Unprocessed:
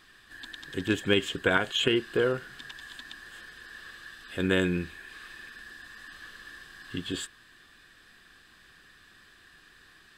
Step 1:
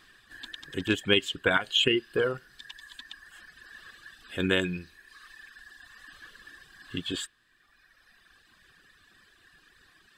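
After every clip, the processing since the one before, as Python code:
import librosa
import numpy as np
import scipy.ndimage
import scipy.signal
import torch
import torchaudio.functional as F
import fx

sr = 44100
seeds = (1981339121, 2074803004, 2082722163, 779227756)

y = fx.dereverb_blind(x, sr, rt60_s=1.9)
y = fx.dynamic_eq(y, sr, hz=3000.0, q=1.4, threshold_db=-47.0, ratio=4.0, max_db=5)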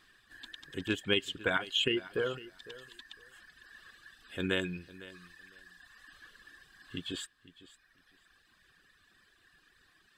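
y = fx.echo_feedback(x, sr, ms=505, feedback_pct=18, wet_db=-18)
y = y * librosa.db_to_amplitude(-6.0)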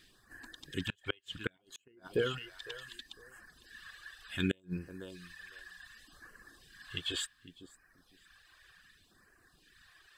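y = fx.gate_flip(x, sr, shuts_db=-20.0, range_db=-37)
y = fx.phaser_stages(y, sr, stages=2, low_hz=200.0, high_hz=3600.0, hz=0.67, feedback_pct=0)
y = y * librosa.db_to_amplitude(5.0)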